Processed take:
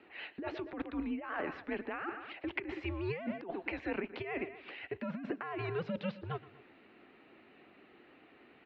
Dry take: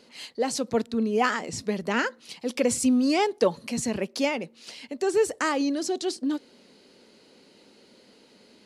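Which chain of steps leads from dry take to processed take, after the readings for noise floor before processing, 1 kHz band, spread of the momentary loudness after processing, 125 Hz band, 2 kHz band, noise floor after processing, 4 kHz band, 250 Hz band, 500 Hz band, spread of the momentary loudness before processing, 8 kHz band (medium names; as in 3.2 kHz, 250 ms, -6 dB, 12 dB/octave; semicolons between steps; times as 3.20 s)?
-57 dBFS, -13.5 dB, 6 LU, -3.0 dB, -9.5 dB, -62 dBFS, -17.0 dB, -13.5 dB, -14.0 dB, 11 LU, under -40 dB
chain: vibrato 10 Hz 44 cents; echo from a far wall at 41 m, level -24 dB; mistuned SSB -170 Hz 480–2800 Hz; on a send: delay 118 ms -20 dB; on the sum: compressor with a negative ratio -34 dBFS, ratio -1; trim -3.5 dB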